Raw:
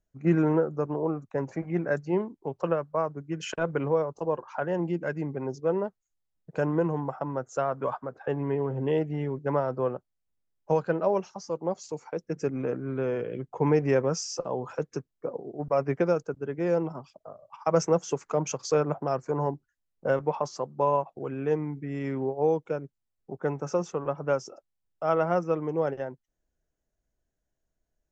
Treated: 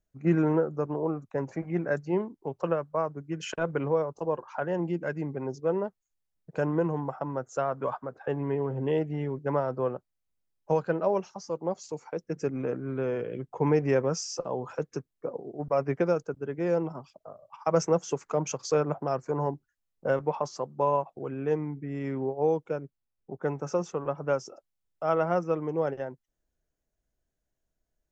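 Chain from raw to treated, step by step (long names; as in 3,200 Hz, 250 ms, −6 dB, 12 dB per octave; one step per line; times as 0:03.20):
0:21.21–0:23.41: one half of a high-frequency compander decoder only
level −1 dB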